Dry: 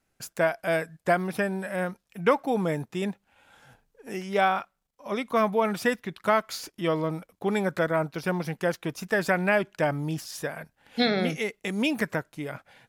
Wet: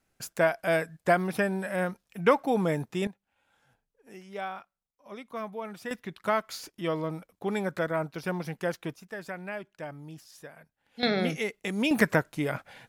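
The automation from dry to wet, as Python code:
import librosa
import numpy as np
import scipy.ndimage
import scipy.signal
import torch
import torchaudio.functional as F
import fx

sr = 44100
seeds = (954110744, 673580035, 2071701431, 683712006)

y = fx.gain(x, sr, db=fx.steps((0.0, 0.0), (3.07, -13.0), (5.91, -4.0), (8.95, -14.0), (11.03, -1.5), (11.91, 5.0)))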